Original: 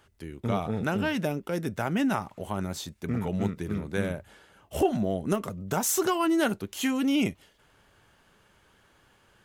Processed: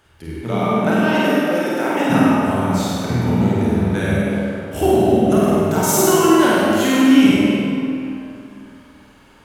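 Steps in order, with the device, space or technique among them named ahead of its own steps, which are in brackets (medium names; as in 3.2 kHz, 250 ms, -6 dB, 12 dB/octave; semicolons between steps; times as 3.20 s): tunnel (flutter echo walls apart 8.5 m, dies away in 0.95 s; reverberation RT60 2.9 s, pre-delay 28 ms, DRR -5 dB); 0.41–2.09 s: high-pass 120 Hz -> 290 Hz 24 dB/octave; trim +3.5 dB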